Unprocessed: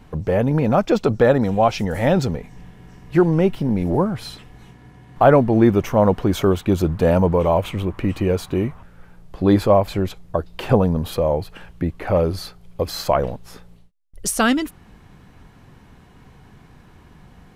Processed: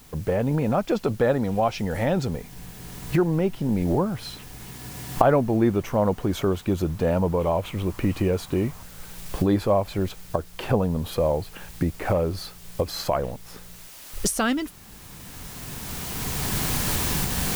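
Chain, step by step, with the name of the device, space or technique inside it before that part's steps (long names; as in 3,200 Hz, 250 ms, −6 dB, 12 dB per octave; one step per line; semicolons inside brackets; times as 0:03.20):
cheap recorder with automatic gain (white noise bed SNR 27 dB; camcorder AGC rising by 12 dB per second)
level −6.5 dB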